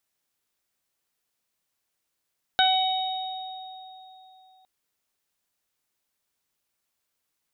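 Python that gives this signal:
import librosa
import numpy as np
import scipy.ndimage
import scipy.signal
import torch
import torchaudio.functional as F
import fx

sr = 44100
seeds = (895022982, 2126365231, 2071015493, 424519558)

y = fx.additive(sr, length_s=2.06, hz=752.0, level_db=-19.5, upper_db=(-0.5, -12.5, -7, -1.0), decay_s=3.37, upper_decays_s=(0.28, 1.38, 1.55, 2.73))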